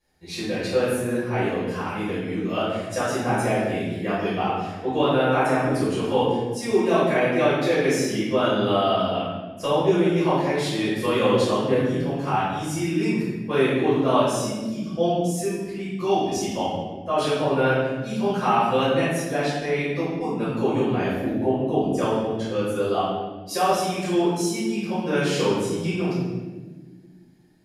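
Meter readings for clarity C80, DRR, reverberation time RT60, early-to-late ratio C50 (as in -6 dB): 2.0 dB, -13.5 dB, 1.3 s, -1.0 dB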